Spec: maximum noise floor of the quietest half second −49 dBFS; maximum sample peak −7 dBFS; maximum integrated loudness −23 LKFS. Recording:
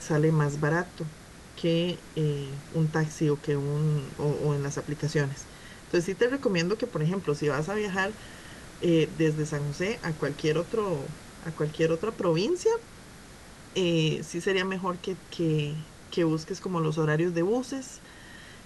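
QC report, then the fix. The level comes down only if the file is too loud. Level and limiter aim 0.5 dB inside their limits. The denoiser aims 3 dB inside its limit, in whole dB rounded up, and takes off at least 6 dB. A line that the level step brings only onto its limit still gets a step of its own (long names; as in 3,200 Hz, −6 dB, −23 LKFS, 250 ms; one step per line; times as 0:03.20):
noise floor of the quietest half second −48 dBFS: out of spec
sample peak −12.5 dBFS: in spec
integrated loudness −28.5 LKFS: in spec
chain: broadband denoise 6 dB, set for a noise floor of −48 dBFS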